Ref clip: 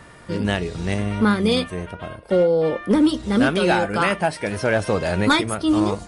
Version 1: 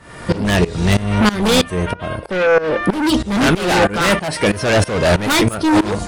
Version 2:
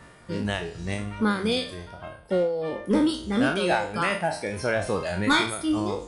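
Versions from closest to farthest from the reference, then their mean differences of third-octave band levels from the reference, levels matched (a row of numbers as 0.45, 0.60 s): 2, 1; 2.5, 5.5 dB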